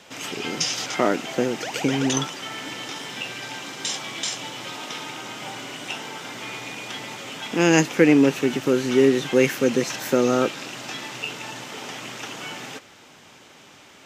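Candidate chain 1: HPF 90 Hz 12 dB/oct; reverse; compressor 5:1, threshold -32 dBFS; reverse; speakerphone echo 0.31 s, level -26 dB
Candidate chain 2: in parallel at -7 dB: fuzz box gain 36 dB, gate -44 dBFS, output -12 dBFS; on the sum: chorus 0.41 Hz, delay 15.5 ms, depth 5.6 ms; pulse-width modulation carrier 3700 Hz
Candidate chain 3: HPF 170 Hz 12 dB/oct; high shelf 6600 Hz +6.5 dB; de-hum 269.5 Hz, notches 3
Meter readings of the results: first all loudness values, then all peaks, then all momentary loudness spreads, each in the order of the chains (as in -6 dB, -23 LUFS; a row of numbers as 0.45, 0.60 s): -34.5, -21.5, -24.0 LUFS; -19.0, -4.0, -3.0 dBFS; 3, 6, 14 LU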